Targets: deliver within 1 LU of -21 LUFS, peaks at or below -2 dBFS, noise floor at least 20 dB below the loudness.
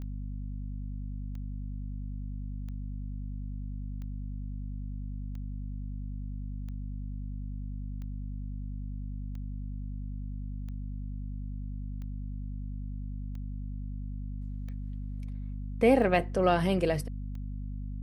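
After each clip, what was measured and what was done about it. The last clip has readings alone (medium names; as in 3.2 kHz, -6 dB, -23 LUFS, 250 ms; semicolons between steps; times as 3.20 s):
clicks found 14; hum 50 Hz; highest harmonic 250 Hz; hum level -34 dBFS; loudness -35.5 LUFS; peak level -10.5 dBFS; loudness target -21.0 LUFS
-> de-click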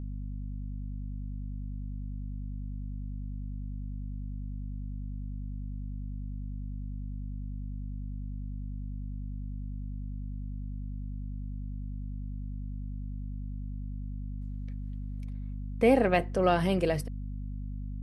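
clicks found 0; hum 50 Hz; highest harmonic 250 Hz; hum level -34 dBFS
-> de-hum 50 Hz, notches 5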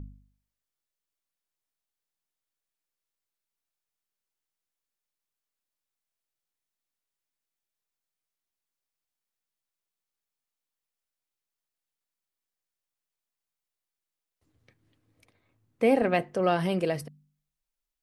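hum not found; loudness -26.5 LUFS; peak level -10.5 dBFS; loudness target -21.0 LUFS
-> trim +5.5 dB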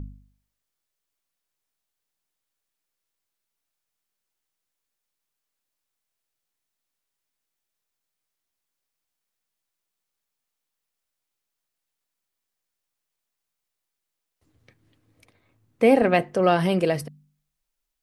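loudness -21.0 LUFS; peak level -5.0 dBFS; noise floor -83 dBFS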